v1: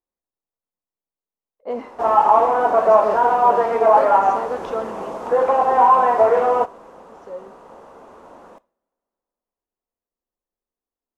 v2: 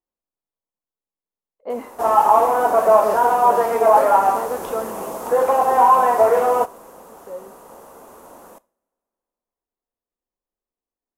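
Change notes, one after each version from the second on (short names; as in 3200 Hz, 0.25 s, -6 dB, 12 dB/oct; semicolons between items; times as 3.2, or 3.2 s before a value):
background: remove LPF 3800 Hz 12 dB/oct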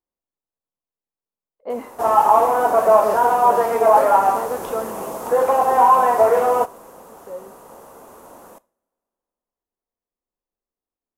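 master: add bell 120 Hz +7 dB 0.36 oct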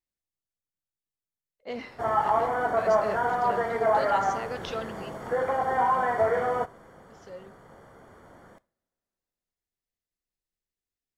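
background: add polynomial smoothing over 41 samples; master: add graphic EQ 125/250/500/1000/2000/4000/8000 Hz +6/-6/-7/-12/+5/+8/+5 dB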